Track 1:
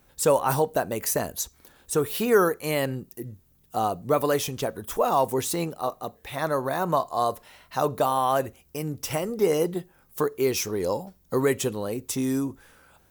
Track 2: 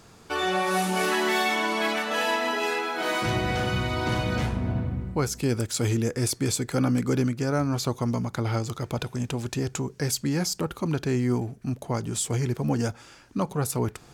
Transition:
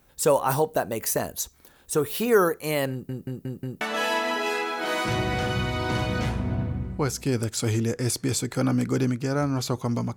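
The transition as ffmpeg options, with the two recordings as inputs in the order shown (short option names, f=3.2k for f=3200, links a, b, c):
-filter_complex "[0:a]apad=whole_dur=10.16,atrim=end=10.16,asplit=5[a][b][c][d][e];[a]atrim=end=3.092[f];[b]atrim=start=2.908:end=3.092[g];[c]atrim=start=2.908:end=3.092[h];[d]atrim=start=2.908:end=3.092[i];[e]atrim=start=2.908:end=3.092[j];[1:a]atrim=start=1.978:end=8.33[k];[f][g]acrossfade=d=0.004:c1=hsin:c2=hsin[l];[l][h]acrossfade=d=0.004:c1=hsin:c2=hsin[m];[m][i]acrossfade=d=0.004:c1=hsin:c2=hsin[n];[n][j]acrossfade=d=0.004:c1=hsin:c2=hsin[o];[o][k]acrossfade=d=0.004:c1=hsin:c2=hsin"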